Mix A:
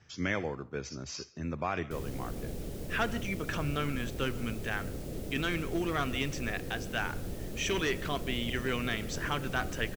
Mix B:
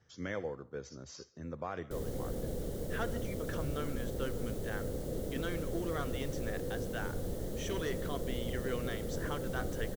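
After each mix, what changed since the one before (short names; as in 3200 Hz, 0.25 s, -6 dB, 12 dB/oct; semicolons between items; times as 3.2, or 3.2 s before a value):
speech -7.5 dB; master: add thirty-one-band EQ 500 Hz +8 dB, 2500 Hz -11 dB, 5000 Hz -3 dB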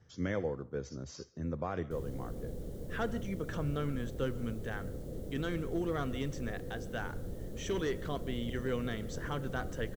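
background -10.0 dB; master: add low shelf 420 Hz +8 dB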